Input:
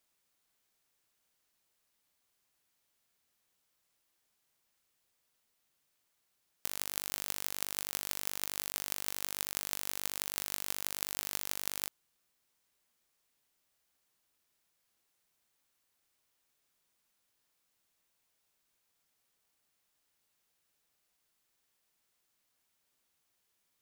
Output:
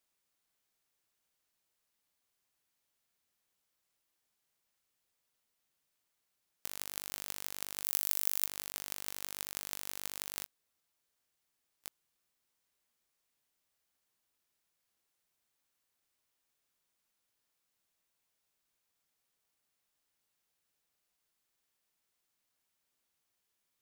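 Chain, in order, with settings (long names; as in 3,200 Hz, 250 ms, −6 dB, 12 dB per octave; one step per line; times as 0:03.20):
0:07.84–0:08.46: high-shelf EQ 7,300 Hz +12 dB
0:10.46–0:11.84: fill with room tone
level −4 dB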